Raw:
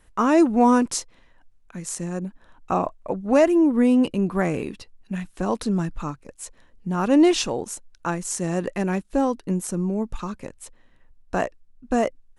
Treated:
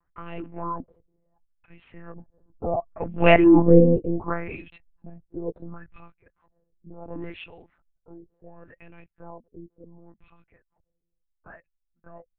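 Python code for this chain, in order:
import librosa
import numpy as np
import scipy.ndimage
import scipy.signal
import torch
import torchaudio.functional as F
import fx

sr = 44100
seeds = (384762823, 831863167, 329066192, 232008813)

y = fx.doppler_pass(x, sr, speed_mps=10, closest_m=2.5, pass_at_s=3.5)
y = fx.filter_lfo_lowpass(y, sr, shape='sine', hz=0.7, low_hz=380.0, high_hz=2800.0, q=4.9)
y = fx.lpc_monotone(y, sr, seeds[0], pitch_hz=170.0, order=10)
y = y * 10.0 ** (3.0 / 20.0)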